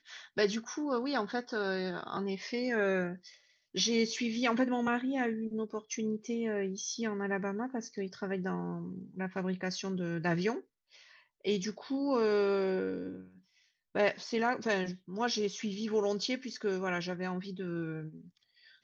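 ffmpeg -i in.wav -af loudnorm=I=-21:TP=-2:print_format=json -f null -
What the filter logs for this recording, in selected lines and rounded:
"input_i" : "-33.9",
"input_tp" : "-16.3",
"input_lra" : "3.7",
"input_thresh" : "-44.4",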